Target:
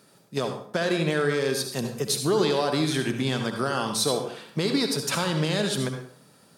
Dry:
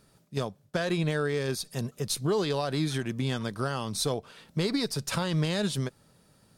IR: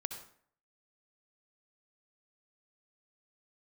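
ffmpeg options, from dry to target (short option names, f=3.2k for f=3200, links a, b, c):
-filter_complex "[0:a]highpass=190,asplit=2[a][b];[b]alimiter=limit=-22dB:level=0:latency=1:release=300,volume=3dB[c];[a][c]amix=inputs=2:normalize=0[d];[1:a]atrim=start_sample=2205[e];[d][e]afir=irnorm=-1:irlink=0"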